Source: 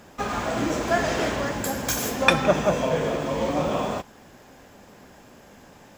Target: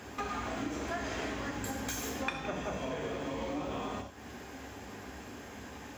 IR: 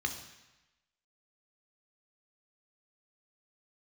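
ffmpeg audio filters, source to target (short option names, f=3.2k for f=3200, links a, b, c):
-filter_complex "[1:a]atrim=start_sample=2205,afade=t=out:st=0.15:d=0.01,atrim=end_sample=7056[a];[0:a][a]afir=irnorm=-1:irlink=0,acompressor=threshold=-37dB:ratio=4"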